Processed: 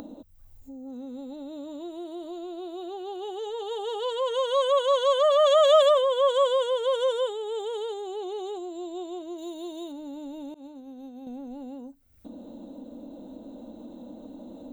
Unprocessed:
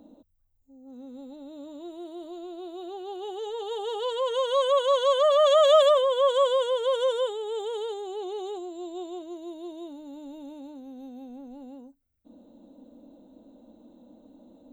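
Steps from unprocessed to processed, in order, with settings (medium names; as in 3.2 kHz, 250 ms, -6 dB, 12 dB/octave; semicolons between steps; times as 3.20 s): 9.38–9.92 s: treble shelf 3.1 kHz +10 dB; 10.54–11.27 s: expander -34 dBFS; upward compressor, threshold -32 dBFS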